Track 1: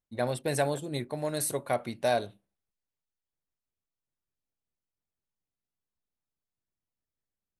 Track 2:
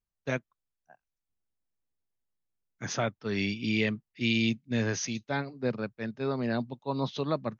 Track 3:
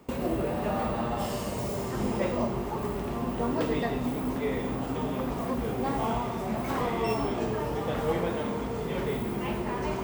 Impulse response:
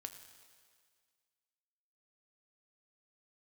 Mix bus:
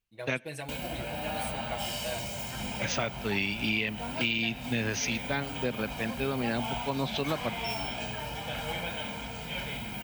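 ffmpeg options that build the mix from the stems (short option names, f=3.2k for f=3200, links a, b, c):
-filter_complex "[0:a]aecho=1:1:6.2:0.96,acrusher=bits=8:mode=log:mix=0:aa=0.000001,volume=-14.5dB[a];[1:a]volume=0.5dB,asplit=2[b][c];[c]volume=-12dB[d];[2:a]highshelf=f=2k:g=11.5,aecho=1:1:1.3:0.75,adelay=600,volume=-10dB[e];[3:a]atrim=start_sample=2205[f];[d][f]afir=irnorm=-1:irlink=0[g];[a][b][e][g]amix=inputs=4:normalize=0,equalizer=f=2.7k:t=o:w=0.8:g=10.5,acompressor=threshold=-26dB:ratio=6"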